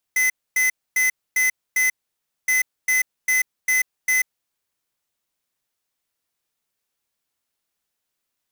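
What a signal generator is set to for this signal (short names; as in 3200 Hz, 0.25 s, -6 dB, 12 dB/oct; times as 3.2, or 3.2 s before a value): beep pattern square 2030 Hz, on 0.14 s, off 0.26 s, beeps 5, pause 0.58 s, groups 2, -18.5 dBFS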